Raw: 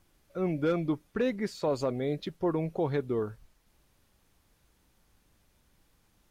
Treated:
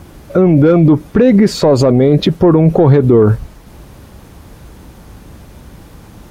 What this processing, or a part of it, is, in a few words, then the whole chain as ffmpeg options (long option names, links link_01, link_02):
mastering chain: -af "highpass=43,equalizer=frequency=1000:width_type=o:width=1.9:gain=3,acompressor=threshold=-29dB:ratio=2.5,asoftclip=type=tanh:threshold=-22.5dB,tiltshelf=frequency=700:gain=6,alimiter=level_in=30dB:limit=-1dB:release=50:level=0:latency=1,volume=-1dB"